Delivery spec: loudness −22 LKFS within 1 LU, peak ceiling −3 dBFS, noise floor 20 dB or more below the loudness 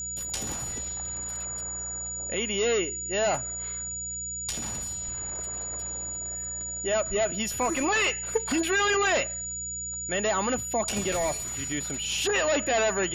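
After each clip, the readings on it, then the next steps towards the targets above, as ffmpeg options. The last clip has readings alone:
mains hum 60 Hz; hum harmonics up to 180 Hz; level of the hum −44 dBFS; interfering tone 6,900 Hz; level of the tone −32 dBFS; integrated loudness −27.5 LKFS; sample peak −13.0 dBFS; target loudness −22.0 LKFS
→ -af "bandreject=frequency=60:width_type=h:width=4,bandreject=frequency=120:width_type=h:width=4,bandreject=frequency=180:width_type=h:width=4"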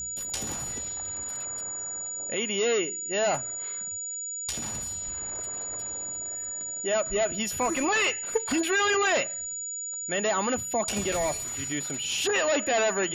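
mains hum none found; interfering tone 6,900 Hz; level of the tone −32 dBFS
→ -af "bandreject=frequency=6900:width=30"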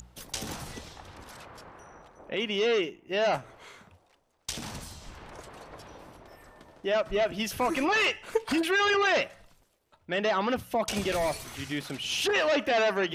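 interfering tone none found; integrated loudness −28.0 LKFS; sample peak −14.5 dBFS; target loudness −22.0 LKFS
→ -af "volume=6dB"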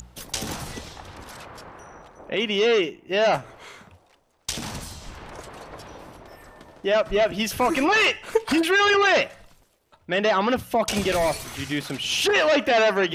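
integrated loudness −22.0 LKFS; sample peak −8.5 dBFS; background noise floor −61 dBFS

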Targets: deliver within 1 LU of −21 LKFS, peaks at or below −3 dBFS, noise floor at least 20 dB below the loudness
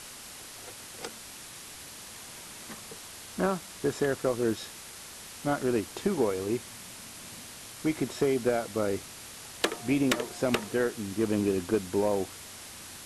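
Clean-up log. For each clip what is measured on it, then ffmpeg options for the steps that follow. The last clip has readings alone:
background noise floor −46 dBFS; target noise floor −50 dBFS; integrated loudness −30.0 LKFS; sample peak −15.5 dBFS; target loudness −21.0 LKFS
→ -af "afftdn=noise_reduction=6:noise_floor=-46"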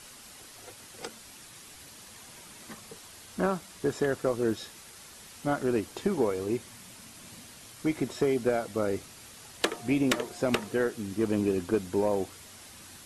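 background noise floor −50 dBFS; integrated loudness −30.0 LKFS; sample peak −15.5 dBFS; target loudness −21.0 LKFS
→ -af "volume=9dB"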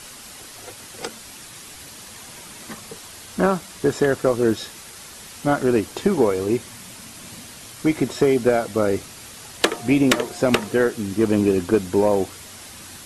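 integrated loudness −21.0 LKFS; sample peak −6.5 dBFS; background noise floor −41 dBFS

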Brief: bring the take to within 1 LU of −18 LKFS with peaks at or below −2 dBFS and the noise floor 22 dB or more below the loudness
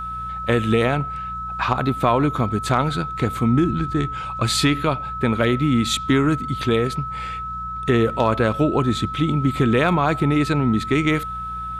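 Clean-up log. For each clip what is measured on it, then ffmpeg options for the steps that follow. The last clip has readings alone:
mains hum 60 Hz; hum harmonics up to 180 Hz; level of the hum −35 dBFS; interfering tone 1,300 Hz; level of the tone −27 dBFS; integrated loudness −20.5 LKFS; sample peak −5.5 dBFS; target loudness −18.0 LKFS
→ -af "bandreject=frequency=60:width_type=h:width=4,bandreject=frequency=120:width_type=h:width=4,bandreject=frequency=180:width_type=h:width=4"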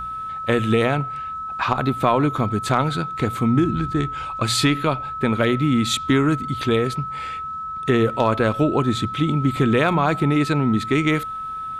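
mains hum none found; interfering tone 1,300 Hz; level of the tone −27 dBFS
→ -af "bandreject=frequency=1300:width=30"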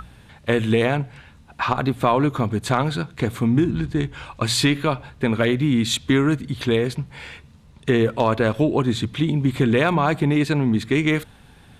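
interfering tone none found; integrated loudness −21.0 LKFS; sample peak −6.0 dBFS; target loudness −18.0 LKFS
→ -af "volume=3dB"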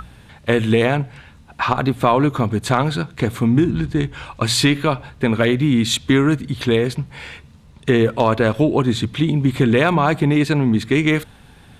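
integrated loudness −18.0 LKFS; sample peak −3.0 dBFS; background noise floor −46 dBFS

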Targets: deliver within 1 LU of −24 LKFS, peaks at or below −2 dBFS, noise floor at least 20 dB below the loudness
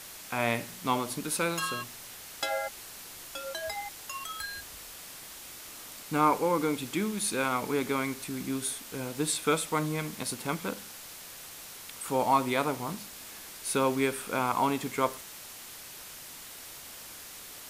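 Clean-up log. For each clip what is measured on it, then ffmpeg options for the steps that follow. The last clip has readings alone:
background noise floor −46 dBFS; target noise floor −51 dBFS; integrated loudness −31.0 LKFS; sample peak −10.5 dBFS; target loudness −24.0 LKFS
→ -af "afftdn=noise_reduction=6:noise_floor=-46"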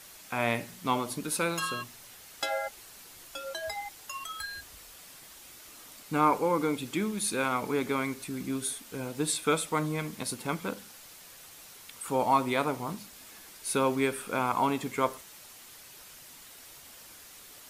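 background noise floor −51 dBFS; integrated loudness −31.0 LKFS; sample peak −11.0 dBFS; target loudness −24.0 LKFS
→ -af "volume=7dB"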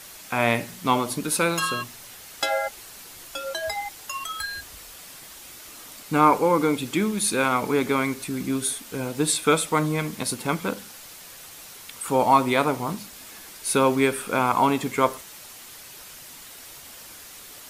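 integrated loudness −24.0 LKFS; sample peak −4.0 dBFS; background noise floor −44 dBFS

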